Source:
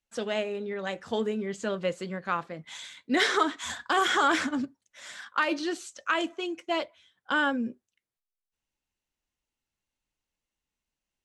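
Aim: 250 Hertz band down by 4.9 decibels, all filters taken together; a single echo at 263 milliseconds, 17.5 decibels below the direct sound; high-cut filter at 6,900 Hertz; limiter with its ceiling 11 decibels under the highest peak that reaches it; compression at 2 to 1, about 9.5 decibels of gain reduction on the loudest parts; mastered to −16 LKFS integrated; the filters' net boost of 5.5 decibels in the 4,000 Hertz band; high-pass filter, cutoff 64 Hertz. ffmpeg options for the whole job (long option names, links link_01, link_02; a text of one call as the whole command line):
ffmpeg -i in.wav -af "highpass=64,lowpass=6900,equalizer=frequency=250:width_type=o:gain=-6.5,equalizer=frequency=4000:width_type=o:gain=7.5,acompressor=threshold=-36dB:ratio=2,alimiter=level_in=4dB:limit=-24dB:level=0:latency=1,volume=-4dB,aecho=1:1:263:0.133,volume=23dB" out.wav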